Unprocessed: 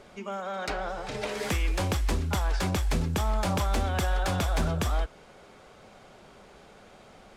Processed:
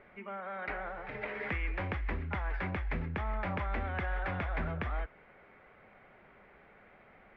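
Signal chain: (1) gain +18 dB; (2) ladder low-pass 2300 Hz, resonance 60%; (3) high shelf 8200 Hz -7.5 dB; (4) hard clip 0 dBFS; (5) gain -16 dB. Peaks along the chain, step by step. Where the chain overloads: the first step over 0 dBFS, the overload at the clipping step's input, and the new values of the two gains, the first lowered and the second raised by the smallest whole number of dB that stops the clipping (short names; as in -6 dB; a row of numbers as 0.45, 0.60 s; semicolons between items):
-0.5, -4.5, -5.0, -5.0, -21.0 dBFS; no overload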